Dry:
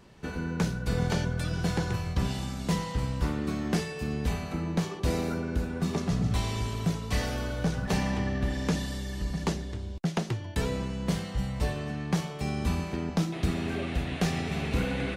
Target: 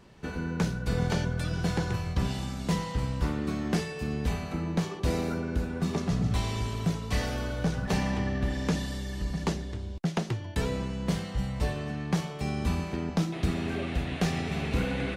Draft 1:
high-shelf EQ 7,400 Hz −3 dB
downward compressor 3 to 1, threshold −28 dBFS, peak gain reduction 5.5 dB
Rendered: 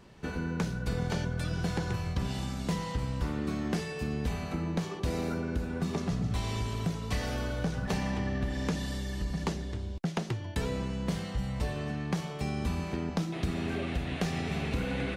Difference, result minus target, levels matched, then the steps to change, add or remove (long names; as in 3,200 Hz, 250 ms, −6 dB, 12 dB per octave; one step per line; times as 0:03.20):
downward compressor: peak gain reduction +5.5 dB
remove: downward compressor 3 to 1, threshold −28 dBFS, peak gain reduction 5.5 dB